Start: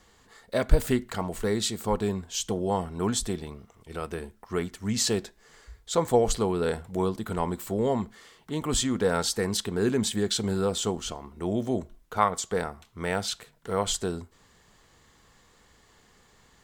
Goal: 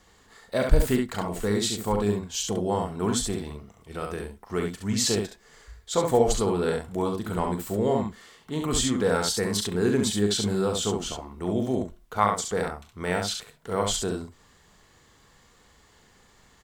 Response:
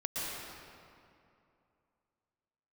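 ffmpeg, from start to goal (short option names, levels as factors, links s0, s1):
-af "aecho=1:1:39|68:0.335|0.596"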